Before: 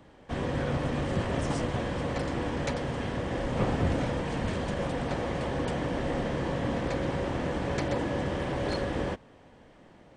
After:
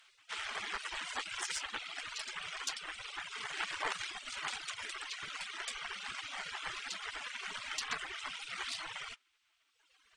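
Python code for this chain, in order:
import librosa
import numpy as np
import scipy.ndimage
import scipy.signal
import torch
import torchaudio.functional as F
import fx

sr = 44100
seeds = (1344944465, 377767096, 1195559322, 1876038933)

y = fx.cheby_harmonics(x, sr, harmonics=(4,), levels_db=(-17,), full_scale_db=-14.5)
y = fx.spec_gate(y, sr, threshold_db=-20, keep='weak')
y = fx.dereverb_blind(y, sr, rt60_s=1.8)
y = y * 10.0 ** (6.0 / 20.0)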